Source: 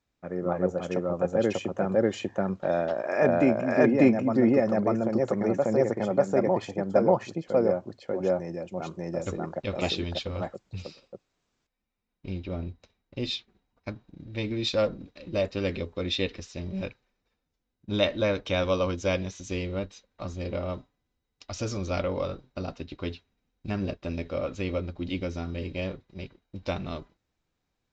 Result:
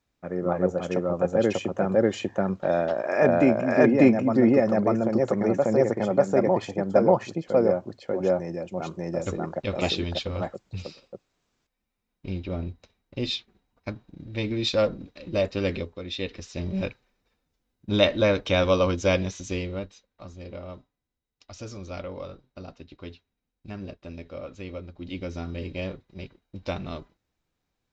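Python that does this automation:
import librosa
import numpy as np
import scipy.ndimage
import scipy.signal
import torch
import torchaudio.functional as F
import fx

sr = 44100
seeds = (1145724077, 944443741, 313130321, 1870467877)

y = fx.gain(x, sr, db=fx.line((15.77, 2.5), (16.03, -6.5), (16.61, 4.5), (19.35, 4.5), (20.23, -7.0), (24.89, -7.0), (25.38, 0.0)))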